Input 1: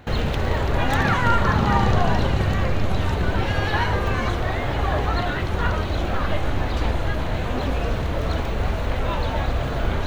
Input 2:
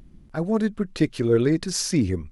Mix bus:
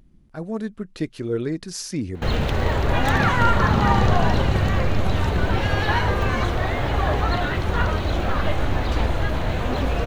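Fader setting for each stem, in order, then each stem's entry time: +1.0, −5.5 decibels; 2.15, 0.00 seconds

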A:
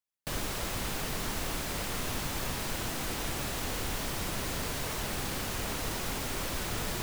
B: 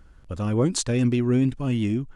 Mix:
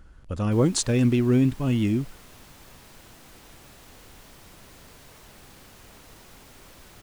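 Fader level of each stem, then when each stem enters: −15.0, +1.0 decibels; 0.25, 0.00 seconds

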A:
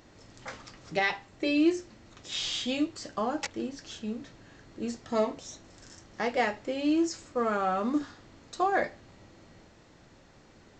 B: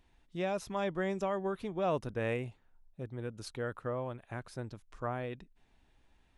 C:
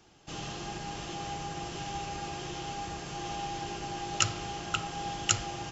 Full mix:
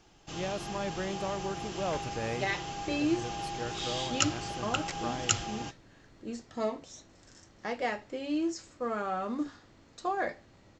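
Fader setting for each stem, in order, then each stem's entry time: −5.0, −2.0, −1.0 decibels; 1.45, 0.00, 0.00 seconds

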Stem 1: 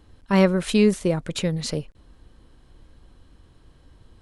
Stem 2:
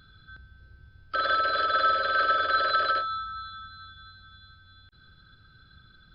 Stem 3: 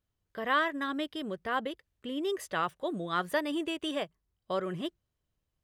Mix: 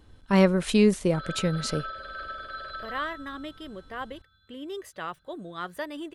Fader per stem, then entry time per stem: −2.0, −14.0, −4.5 decibels; 0.00, 0.00, 2.45 seconds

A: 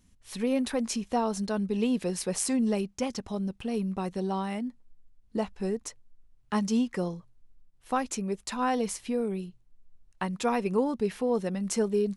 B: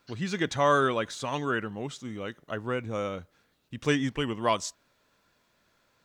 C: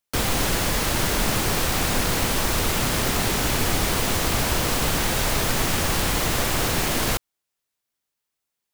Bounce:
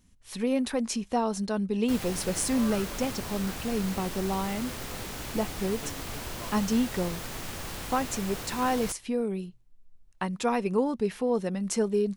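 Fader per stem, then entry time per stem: +0.5, −19.0, −15.0 decibels; 0.00, 1.95, 1.75 seconds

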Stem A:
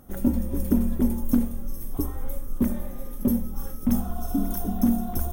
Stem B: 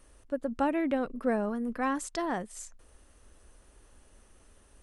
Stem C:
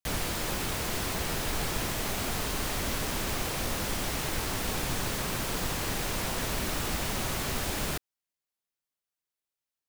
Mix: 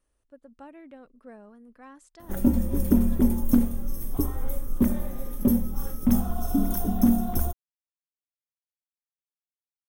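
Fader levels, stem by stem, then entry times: +1.5 dB, −18.0 dB, muted; 2.20 s, 0.00 s, muted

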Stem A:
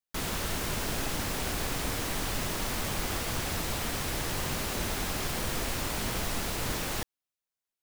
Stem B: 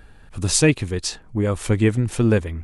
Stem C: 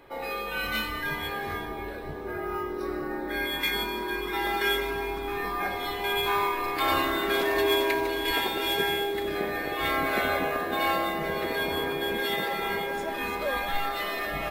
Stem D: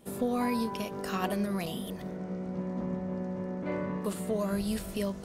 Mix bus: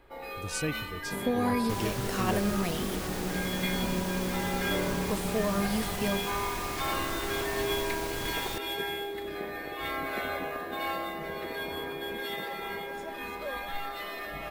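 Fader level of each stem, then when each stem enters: −5.0, −16.5, −7.0, +1.5 decibels; 1.55, 0.00, 0.00, 1.05 seconds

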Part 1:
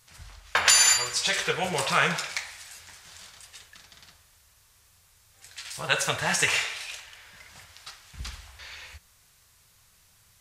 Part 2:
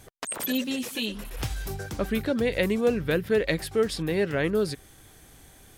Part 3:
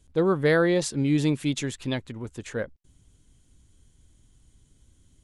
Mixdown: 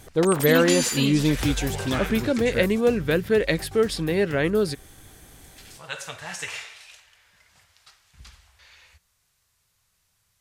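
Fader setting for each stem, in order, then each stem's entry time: −9.5, +3.0, +2.0 decibels; 0.00, 0.00, 0.00 seconds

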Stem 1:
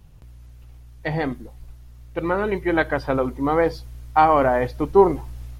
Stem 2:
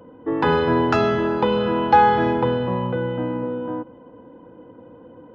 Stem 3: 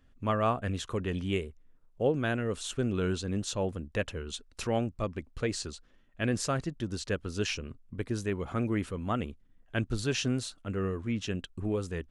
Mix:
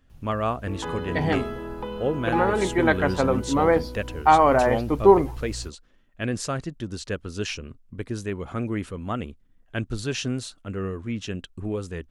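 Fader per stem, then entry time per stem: −0.5, −14.0, +2.0 decibels; 0.10, 0.40, 0.00 seconds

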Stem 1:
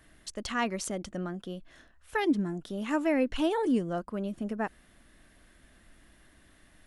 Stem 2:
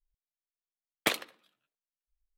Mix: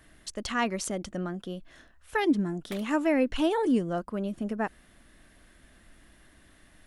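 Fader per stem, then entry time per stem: +2.0, −15.0 decibels; 0.00, 1.65 seconds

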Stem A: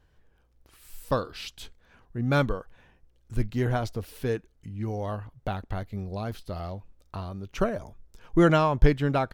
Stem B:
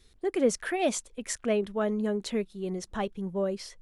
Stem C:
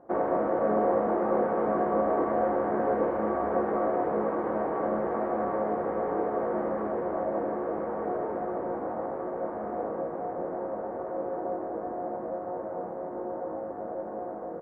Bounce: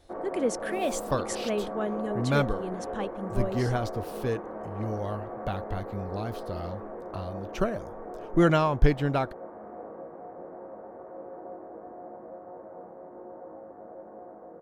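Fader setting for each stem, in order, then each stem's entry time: −1.5, −3.0, −9.5 decibels; 0.00, 0.00, 0.00 seconds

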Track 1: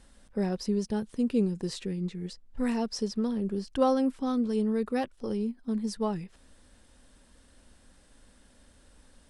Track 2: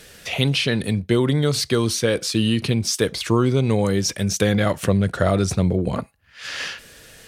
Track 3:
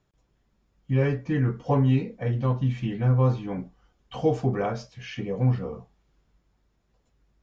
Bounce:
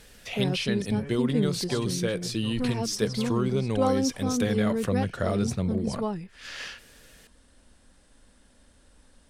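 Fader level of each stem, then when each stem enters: 0.0, −9.0, −16.5 decibels; 0.00, 0.00, 0.00 seconds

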